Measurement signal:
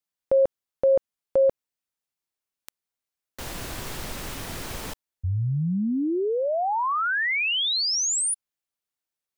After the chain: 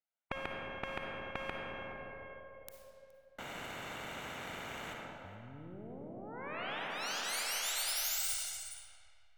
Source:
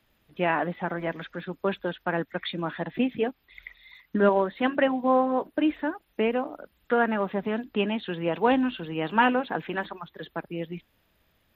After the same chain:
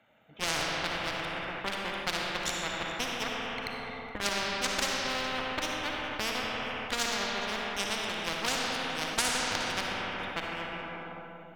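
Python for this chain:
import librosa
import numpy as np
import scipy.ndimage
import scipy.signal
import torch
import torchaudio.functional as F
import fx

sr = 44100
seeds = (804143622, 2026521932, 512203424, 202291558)

p1 = fx.wiener(x, sr, points=9)
p2 = scipy.signal.sosfilt(scipy.signal.butter(2, 220.0, 'highpass', fs=sr, output='sos'), p1)
p3 = p2 + 0.61 * np.pad(p2, (int(1.4 * sr / 1000.0), 0))[:len(p2)]
p4 = fx.cheby_harmonics(p3, sr, harmonics=(2, 3, 7, 8), levels_db=(-20, -16, -28, -23), full_scale_db=-7.0)
p5 = p4 + fx.echo_single(p4, sr, ms=419, db=-24.0, dry=0)
p6 = fx.rev_freeverb(p5, sr, rt60_s=2.4, hf_ratio=0.7, predelay_ms=15, drr_db=1.0)
p7 = fx.spectral_comp(p6, sr, ratio=4.0)
y = p7 * 10.0 ** (-6.0 / 20.0)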